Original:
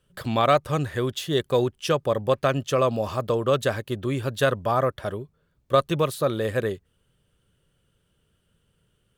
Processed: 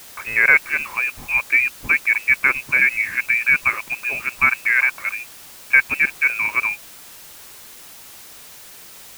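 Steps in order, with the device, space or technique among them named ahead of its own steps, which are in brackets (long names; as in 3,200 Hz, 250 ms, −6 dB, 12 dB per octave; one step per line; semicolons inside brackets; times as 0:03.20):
scrambled radio voice (band-pass filter 330–2,900 Hz; voice inversion scrambler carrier 2,800 Hz; white noise bed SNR 20 dB)
level +6 dB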